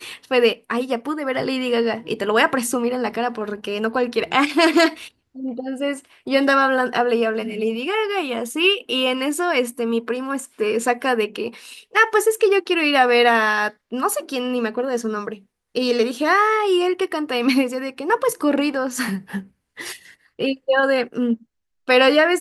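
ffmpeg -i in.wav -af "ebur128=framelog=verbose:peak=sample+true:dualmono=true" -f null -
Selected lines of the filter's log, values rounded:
Integrated loudness:
  I:         -16.9 LUFS
  Threshold: -27.3 LUFS
Loudness range:
  LRA:         4.2 LU
  Threshold: -37.4 LUFS
  LRA low:   -19.3 LUFS
  LRA high:  -15.1 LUFS
Sample peak:
  Peak:       -2.8 dBFS
True peak:
  Peak:       -2.7 dBFS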